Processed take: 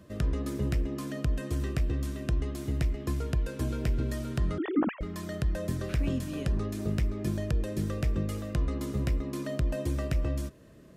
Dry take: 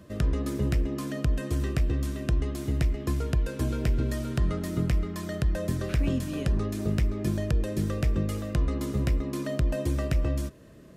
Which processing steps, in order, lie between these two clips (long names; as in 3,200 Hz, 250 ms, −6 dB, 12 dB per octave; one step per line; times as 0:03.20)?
0:04.58–0:05.01: three sine waves on the formant tracks
level −3 dB